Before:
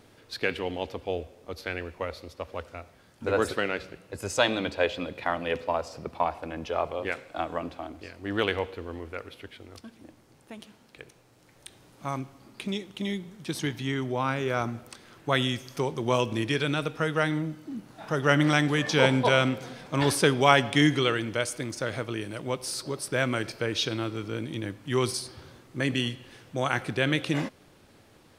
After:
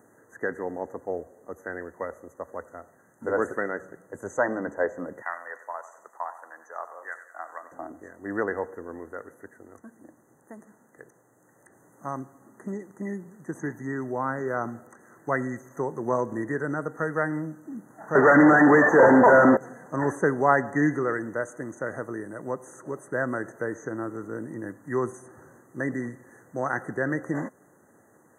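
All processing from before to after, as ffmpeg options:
ffmpeg -i in.wav -filter_complex "[0:a]asettb=1/sr,asplit=3[link_01][link_02][link_03];[link_01]atrim=end=5.224[link_04];[link_02]atrim=start=5.22:end=7.72,asetpts=PTS-STARTPTS,afade=type=in:duration=0.004:curve=qsin,afade=type=out:start_time=2.496:duration=0.004:curve=qsin,highpass=1200,aecho=1:1:93|186|279|372|465:0.224|0.103|0.0474|0.0218|0.01,atrim=end_sample=110250[link_05];[link_03]atrim=start=7.716[link_06];[link_04][link_05]acrossfade=duration=0.004:curve1=hsin:curve2=qsin[link_07];[link_07][link_06]acrossfade=duration=0.004:curve1=qsin:curve2=hsin,asettb=1/sr,asplit=3[link_08][link_09][link_10];[link_08]atrim=end=18.154[link_11];[link_09]atrim=start=18.15:end=19.57,asetpts=PTS-STARTPTS,afade=type=in:duration=0.004:curve=qsin,afade=type=out:start_time=1.416:duration=0.004:curve=qsin,highpass=frequency=130:poles=1,asplit=2[link_12][link_13];[link_13]highpass=frequency=720:poles=1,volume=33dB,asoftclip=type=tanh:threshold=-5dB[link_14];[link_12][link_14]amix=inputs=2:normalize=0,lowpass=frequency=1100:poles=1,volume=-6dB[link_15];[link_10]atrim=start=19.566[link_16];[link_11][link_15]acrossfade=duration=0.004:curve1=hsin:curve2=qsin[link_17];[link_17][link_16]acrossfade=duration=0.004:curve1=qsin:curve2=hsin,acrossover=split=5200[link_18][link_19];[link_19]acompressor=threshold=-58dB:ratio=4:attack=1:release=60[link_20];[link_18][link_20]amix=inputs=2:normalize=0,highpass=170,afftfilt=real='re*(1-between(b*sr/4096,2000,6000))':imag='im*(1-between(b*sr/4096,2000,6000))':win_size=4096:overlap=0.75" out.wav

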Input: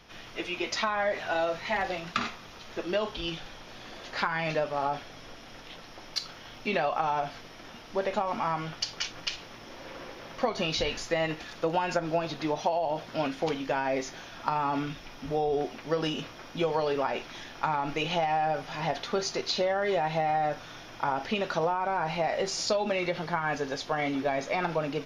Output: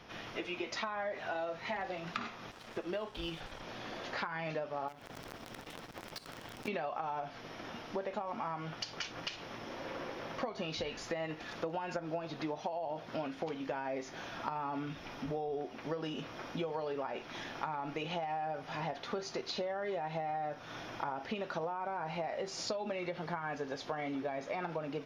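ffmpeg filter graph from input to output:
ffmpeg -i in.wav -filter_complex "[0:a]asettb=1/sr,asplit=3[link_01][link_02][link_03];[link_01]atrim=end=2.514[link_04];[link_02]atrim=start=2.51:end=3.63,asetpts=PTS-STARTPTS,afade=type=in:duration=0.004:curve=qsin,afade=type=out:start_time=1.116:duration=0.004:curve=qsin,asubboost=boost=5.5:cutoff=100,aeval=exprs='sgn(val(0))*max(abs(val(0))-0.00398,0)':channel_layout=same[link_05];[link_03]atrim=start=3.626[link_06];[link_04][link_05]acrossfade=duration=0.004:curve1=hsin:curve2=qsin[link_07];[link_07][link_06]acrossfade=duration=0.004:curve1=qsin:curve2=hsin,asettb=1/sr,asplit=3[link_08][link_09][link_10];[link_08]atrim=end=4.884[link_11];[link_09]atrim=start=4.88:end=6.68,asetpts=PTS-STARTPTS,afade=type=in:duration=0.004:curve=qsin,afade=type=out:start_time=1.796:duration=0.004:curve=qsin,lowshelf=frequency=470:gain=4,acompressor=threshold=-39dB:ratio=6:attack=3.2:release=140:knee=1:detection=peak,acrusher=bits=7:dc=4:mix=0:aa=0.000001[link_12];[link_10]atrim=start=6.676[link_13];[link_11][link_12]acrossfade=duration=0.004:curve1=hsin:curve2=qsin[link_14];[link_14][link_13]acrossfade=duration=0.004:curve1=qsin:curve2=hsin,highpass=frequency=89:poles=1,highshelf=frequency=2900:gain=-8.5,acompressor=threshold=-40dB:ratio=4,volume=3dB" out.wav

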